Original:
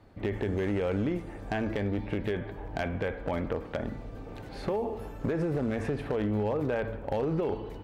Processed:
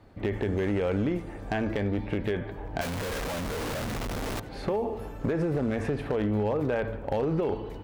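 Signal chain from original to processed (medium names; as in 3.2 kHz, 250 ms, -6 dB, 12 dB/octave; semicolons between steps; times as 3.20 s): 2.81–4.40 s: one-bit comparator; trim +2 dB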